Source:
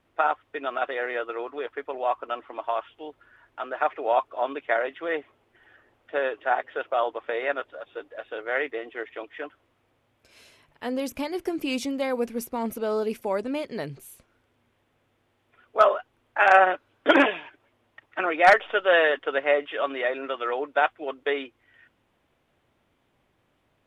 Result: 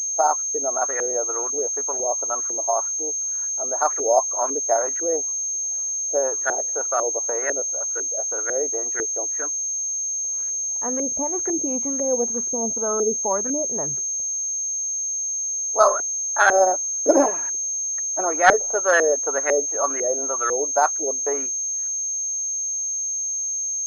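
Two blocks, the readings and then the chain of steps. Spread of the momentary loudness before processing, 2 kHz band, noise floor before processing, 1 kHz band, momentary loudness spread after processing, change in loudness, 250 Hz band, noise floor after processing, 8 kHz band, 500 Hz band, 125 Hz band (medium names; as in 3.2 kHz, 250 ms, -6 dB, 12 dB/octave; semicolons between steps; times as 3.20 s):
18 LU, -1.5 dB, -70 dBFS, +1.5 dB, 5 LU, +4.5 dB, +1.0 dB, -26 dBFS, +34.5 dB, +3.0 dB, no reading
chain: LFO low-pass saw up 2 Hz 400–1700 Hz; class-D stage that switches slowly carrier 6.4 kHz; trim -1 dB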